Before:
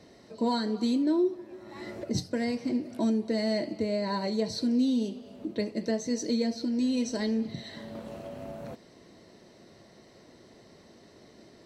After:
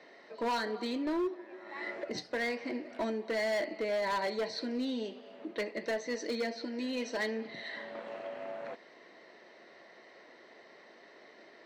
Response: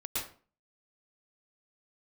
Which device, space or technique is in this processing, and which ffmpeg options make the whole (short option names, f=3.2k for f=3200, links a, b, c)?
megaphone: -af "highpass=510,lowpass=3.2k,equalizer=f=1.9k:t=o:w=0.59:g=6.5,asoftclip=type=hard:threshold=-31dB,volume=2.5dB"